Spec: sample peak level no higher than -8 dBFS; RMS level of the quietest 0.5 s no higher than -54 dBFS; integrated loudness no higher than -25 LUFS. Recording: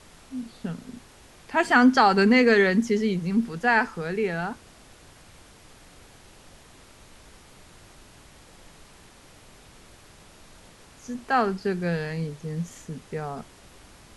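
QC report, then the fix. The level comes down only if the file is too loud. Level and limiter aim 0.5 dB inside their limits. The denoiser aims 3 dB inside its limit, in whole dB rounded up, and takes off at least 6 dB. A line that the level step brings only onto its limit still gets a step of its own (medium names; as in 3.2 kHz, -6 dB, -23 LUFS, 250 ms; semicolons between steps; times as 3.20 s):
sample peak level -7.0 dBFS: fail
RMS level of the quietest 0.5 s -51 dBFS: fail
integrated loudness -23.5 LUFS: fail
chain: noise reduction 6 dB, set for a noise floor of -51 dBFS; trim -2 dB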